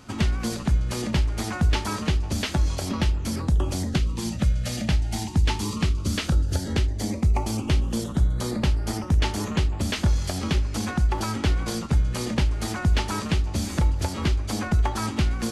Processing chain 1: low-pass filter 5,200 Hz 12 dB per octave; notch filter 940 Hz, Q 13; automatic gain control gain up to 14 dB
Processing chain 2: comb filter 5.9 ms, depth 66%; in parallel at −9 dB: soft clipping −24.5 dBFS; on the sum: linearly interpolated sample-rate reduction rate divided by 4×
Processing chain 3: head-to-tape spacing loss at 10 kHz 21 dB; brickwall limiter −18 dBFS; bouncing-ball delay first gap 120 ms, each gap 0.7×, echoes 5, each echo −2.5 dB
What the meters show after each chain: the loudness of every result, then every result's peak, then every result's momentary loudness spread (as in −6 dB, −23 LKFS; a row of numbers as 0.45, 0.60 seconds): −16.0, −24.0, −25.5 LKFS; −1.5, −8.0, −12.0 dBFS; 3, 2, 1 LU